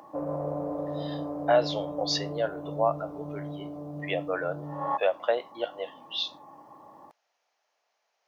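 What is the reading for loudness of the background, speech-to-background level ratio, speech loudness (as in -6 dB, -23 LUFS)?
-35.5 LUFS, 5.5 dB, -30.0 LUFS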